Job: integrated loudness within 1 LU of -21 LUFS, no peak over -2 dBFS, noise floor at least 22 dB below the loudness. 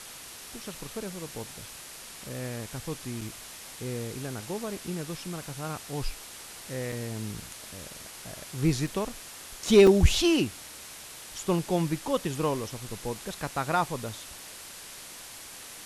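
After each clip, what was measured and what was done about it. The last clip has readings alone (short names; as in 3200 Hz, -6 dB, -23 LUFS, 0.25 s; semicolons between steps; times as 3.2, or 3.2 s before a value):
dropouts 4; longest dropout 3.9 ms; noise floor -45 dBFS; noise floor target -52 dBFS; loudness -29.5 LUFS; peak -8.5 dBFS; loudness target -21.0 LUFS
-> interpolate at 3.21/6.92/8.87/9.87, 3.9 ms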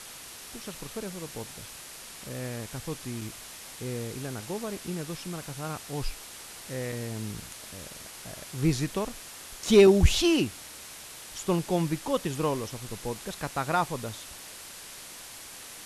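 dropouts 0; noise floor -45 dBFS; noise floor target -52 dBFS
-> noise print and reduce 7 dB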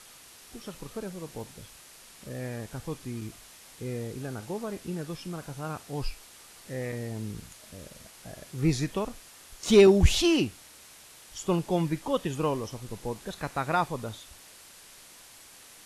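noise floor -52 dBFS; loudness -29.0 LUFS; peak -9.0 dBFS; loudness target -21.0 LUFS
-> gain +8 dB; limiter -2 dBFS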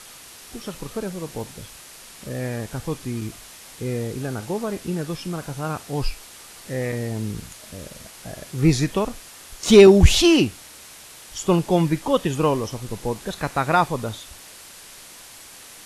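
loudness -21.5 LUFS; peak -2.0 dBFS; noise floor -44 dBFS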